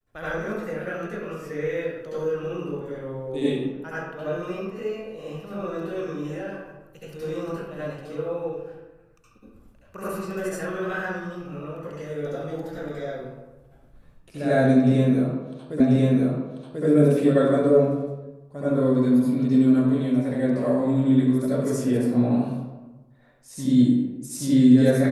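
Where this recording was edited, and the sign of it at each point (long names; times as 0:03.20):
0:15.80: the same again, the last 1.04 s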